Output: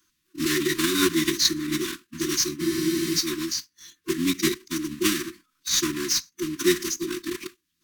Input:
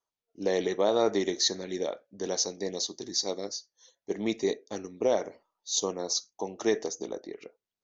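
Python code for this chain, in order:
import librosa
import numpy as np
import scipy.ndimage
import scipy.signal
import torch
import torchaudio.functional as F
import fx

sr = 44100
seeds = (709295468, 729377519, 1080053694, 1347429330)

p1 = fx.block_float(x, sr, bits=3)
p2 = fx.level_steps(p1, sr, step_db=23)
p3 = p1 + F.gain(torch.from_numpy(p2), 0.0).numpy()
p4 = fx.brickwall_bandstop(p3, sr, low_hz=440.0, high_hz=1200.0)
p5 = fx.pitch_keep_formants(p4, sr, semitones=-3.5)
p6 = fx.spec_freeze(p5, sr, seeds[0], at_s=2.62, hold_s=0.54)
p7 = fx.band_squash(p6, sr, depth_pct=40)
y = F.gain(torch.from_numpy(p7), 6.5).numpy()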